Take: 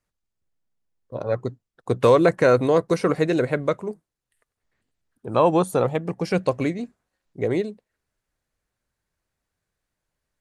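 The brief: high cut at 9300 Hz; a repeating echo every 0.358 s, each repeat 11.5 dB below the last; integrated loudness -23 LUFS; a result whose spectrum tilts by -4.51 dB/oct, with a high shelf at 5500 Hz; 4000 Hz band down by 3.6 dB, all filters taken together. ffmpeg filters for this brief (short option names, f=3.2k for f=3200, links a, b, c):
-af "lowpass=9.3k,equalizer=f=4k:t=o:g=-5.5,highshelf=f=5.5k:g=3.5,aecho=1:1:358|716|1074:0.266|0.0718|0.0194,volume=-1dB"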